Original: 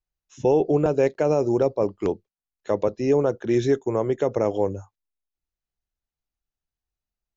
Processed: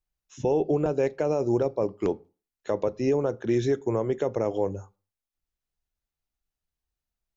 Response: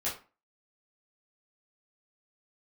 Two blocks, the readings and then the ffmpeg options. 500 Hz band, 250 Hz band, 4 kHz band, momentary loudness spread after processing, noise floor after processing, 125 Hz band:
-4.0 dB, -3.5 dB, -3.0 dB, 7 LU, under -85 dBFS, -3.0 dB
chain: -filter_complex "[0:a]alimiter=limit=-16dB:level=0:latency=1:release=294,asplit=2[a][b];[1:a]atrim=start_sample=2205,lowshelf=f=230:g=12[c];[b][c]afir=irnorm=-1:irlink=0,volume=-23dB[d];[a][d]amix=inputs=2:normalize=0"

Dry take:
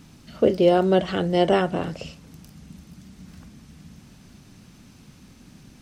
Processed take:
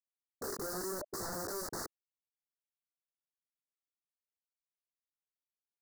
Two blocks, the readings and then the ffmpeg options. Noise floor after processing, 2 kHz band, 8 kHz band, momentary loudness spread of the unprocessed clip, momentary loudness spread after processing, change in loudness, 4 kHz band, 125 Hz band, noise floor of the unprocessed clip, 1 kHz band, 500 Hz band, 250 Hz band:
under -85 dBFS, -15.5 dB, +6.5 dB, 16 LU, 6 LU, -18.5 dB, -15.5 dB, -24.0 dB, -51 dBFS, -18.5 dB, -22.5 dB, -23.5 dB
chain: -af "highpass=f=170:w=0.5412,highpass=f=170:w=1.3066,equalizer=f=400:t=q:w=4:g=9,equalizer=f=580:t=q:w=4:g=5,equalizer=f=820:t=q:w=4:g=-9,equalizer=f=1.3k:t=q:w=4:g=5,equalizer=f=1.9k:t=q:w=4:g=-6,equalizer=f=4k:t=q:w=4:g=7,lowpass=f=5.8k:w=0.5412,lowpass=f=5.8k:w=1.3066,alimiter=limit=-10dB:level=0:latency=1:release=281,afftfilt=real='re*gte(hypot(re,im),0.355)':imag='im*gte(hypot(re,im),0.355)':win_size=1024:overlap=0.75,asoftclip=type=hard:threshold=-27.5dB,flanger=delay=18:depth=3.7:speed=0.87,aeval=exprs='(mod(106*val(0)+1,2)-1)/106':c=same,asuperstop=centerf=2800:order=8:qfactor=1,volume=6.5dB"

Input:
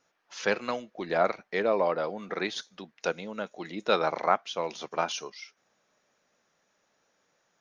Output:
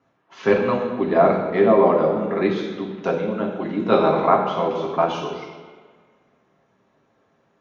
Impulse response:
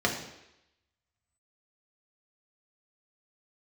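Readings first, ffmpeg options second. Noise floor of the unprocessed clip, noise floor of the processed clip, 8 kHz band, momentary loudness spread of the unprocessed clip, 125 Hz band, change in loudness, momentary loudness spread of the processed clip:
-74 dBFS, -65 dBFS, n/a, 12 LU, +15.5 dB, +10.0 dB, 11 LU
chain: -filter_complex "[0:a]tiltshelf=f=810:g=5[a];[1:a]atrim=start_sample=2205,asetrate=24696,aresample=44100[b];[a][b]afir=irnorm=-1:irlink=0,volume=-7dB"

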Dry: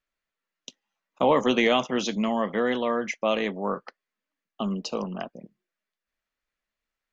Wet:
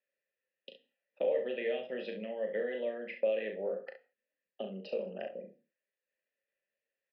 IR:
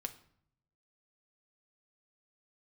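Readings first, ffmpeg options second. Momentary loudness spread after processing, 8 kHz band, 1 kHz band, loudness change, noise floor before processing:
17 LU, n/a, -22.5 dB, -10.5 dB, under -85 dBFS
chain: -filter_complex "[0:a]highpass=130,lowshelf=f=230:g=8.5,acompressor=threshold=-30dB:ratio=6,asplit=3[a][b][c];[a]bandpass=f=530:t=q:w=8,volume=0dB[d];[b]bandpass=f=1.84k:t=q:w=8,volume=-6dB[e];[c]bandpass=f=2.48k:t=q:w=8,volume=-9dB[f];[d][e][f]amix=inputs=3:normalize=0,aecho=1:1:37|67:0.473|0.335,asplit=2[g][h];[1:a]atrim=start_sample=2205,afade=t=out:st=0.23:d=0.01,atrim=end_sample=10584[i];[h][i]afir=irnorm=-1:irlink=0,volume=6dB[j];[g][j]amix=inputs=2:normalize=0,aresample=11025,aresample=44100,volume=-1.5dB"

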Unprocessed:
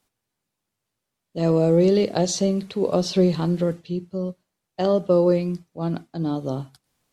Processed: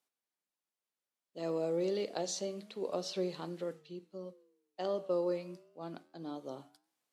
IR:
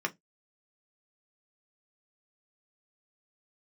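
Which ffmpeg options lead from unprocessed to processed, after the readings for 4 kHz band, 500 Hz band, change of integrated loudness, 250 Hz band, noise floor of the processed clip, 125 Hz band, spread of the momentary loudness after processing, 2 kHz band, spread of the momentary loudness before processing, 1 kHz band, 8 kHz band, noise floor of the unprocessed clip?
-12.0 dB, -14.5 dB, -15.5 dB, -19.0 dB, under -85 dBFS, -24.0 dB, 15 LU, -12.5 dB, 12 LU, -13.0 dB, -12.0 dB, -82 dBFS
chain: -af "flanger=delay=7.7:depth=9.3:regen=-90:speed=0.29:shape=triangular,highpass=280,lowshelf=f=500:g=-3.5,volume=-7.5dB"

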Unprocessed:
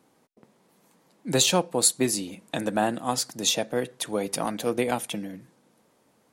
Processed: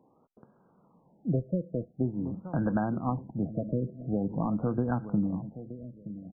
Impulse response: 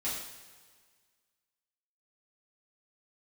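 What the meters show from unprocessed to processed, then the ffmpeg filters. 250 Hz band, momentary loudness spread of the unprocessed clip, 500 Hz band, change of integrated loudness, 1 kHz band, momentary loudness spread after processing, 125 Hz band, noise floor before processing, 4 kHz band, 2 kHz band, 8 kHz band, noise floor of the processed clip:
+1.0 dB, 12 LU, -7.5 dB, -6.0 dB, -8.0 dB, 13 LU, +5.5 dB, -65 dBFS, under -40 dB, -13.5 dB, under -40 dB, -65 dBFS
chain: -filter_complex "[0:a]acompressor=threshold=-26dB:ratio=4,asubboost=boost=8:cutoff=170,asplit=2[a][b];[b]adelay=923,lowpass=f=1.3k:p=1,volume=-13dB,asplit=2[c][d];[d]adelay=923,lowpass=f=1.3k:p=1,volume=0.3,asplit=2[e][f];[f]adelay=923,lowpass=f=1.3k:p=1,volume=0.3[g];[c][e][g]amix=inputs=3:normalize=0[h];[a][h]amix=inputs=2:normalize=0,afftfilt=real='re*lt(b*sr/1024,640*pow(1700/640,0.5+0.5*sin(2*PI*0.46*pts/sr)))':imag='im*lt(b*sr/1024,640*pow(1700/640,0.5+0.5*sin(2*PI*0.46*pts/sr)))':win_size=1024:overlap=0.75"

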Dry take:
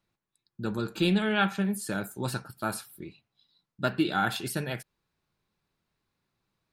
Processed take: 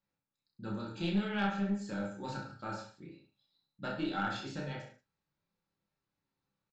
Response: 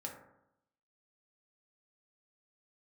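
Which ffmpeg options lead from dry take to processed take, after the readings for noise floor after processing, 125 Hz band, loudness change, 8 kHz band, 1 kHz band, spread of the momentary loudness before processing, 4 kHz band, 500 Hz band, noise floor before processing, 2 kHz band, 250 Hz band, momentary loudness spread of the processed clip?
under -85 dBFS, -7.0 dB, -7.5 dB, -17.0 dB, -7.0 dB, 13 LU, -9.5 dB, -8.5 dB, under -85 dBFS, -8.5 dB, -6.0 dB, 15 LU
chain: -filter_complex "[0:a]aresample=16000,aresample=44100,aecho=1:1:30|63|99.3|139.2|183.2:0.631|0.398|0.251|0.158|0.1[a];[1:a]atrim=start_sample=2205,atrim=end_sample=3087[b];[a][b]afir=irnorm=-1:irlink=0,aeval=exprs='(tanh(6.31*val(0)+0.3)-tanh(0.3))/6.31':c=same,volume=-6.5dB"

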